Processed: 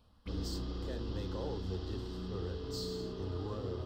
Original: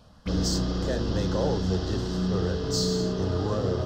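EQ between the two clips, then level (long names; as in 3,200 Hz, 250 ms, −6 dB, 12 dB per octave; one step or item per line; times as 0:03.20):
graphic EQ with 15 bands 160 Hz −12 dB, 630 Hz −9 dB, 1,600 Hz −7 dB, 6,300 Hz −12 dB
−8.5 dB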